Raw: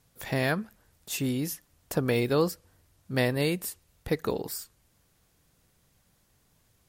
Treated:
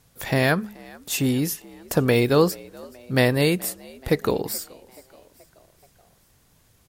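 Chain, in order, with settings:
hum removal 208.4 Hz, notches 2
on a send: echo with shifted repeats 428 ms, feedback 57%, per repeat +64 Hz, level −23.5 dB
on the sum: level +7 dB

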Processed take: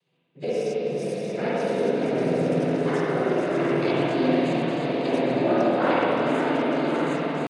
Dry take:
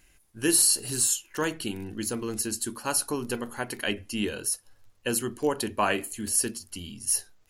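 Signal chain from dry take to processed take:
feedback delay that plays each chunk backwards 291 ms, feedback 82%, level −6.5 dB
low-shelf EQ 430 Hz +10.5 dB
speech leveller within 4 dB 0.5 s
on a send: delay that swaps between a low-pass and a high-pass 346 ms, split 1,200 Hz, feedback 78%, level −10 dB
on the sum: cochlear-implant simulation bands 16
high-frequency loss of the air 190 metres
pitch shifter +5.5 semitones
spring reverb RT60 3.4 s, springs 47/55 ms, chirp 70 ms, DRR −9 dB
level −8 dB

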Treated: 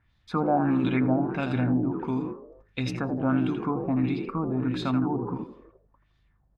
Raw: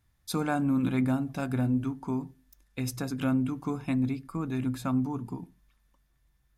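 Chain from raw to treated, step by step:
echo with shifted repeats 82 ms, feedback 46%, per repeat +52 Hz, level −8 dB
auto-filter low-pass sine 1.5 Hz 660–3,900 Hz
in parallel at 0 dB: output level in coarse steps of 20 dB

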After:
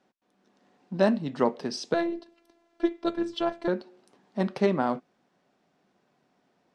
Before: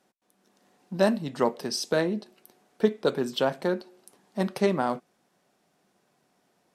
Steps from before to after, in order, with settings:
parametric band 260 Hz +3.5 dB 0.29 octaves
0:01.94–0:03.68: phases set to zero 338 Hz
high-frequency loss of the air 110 metres

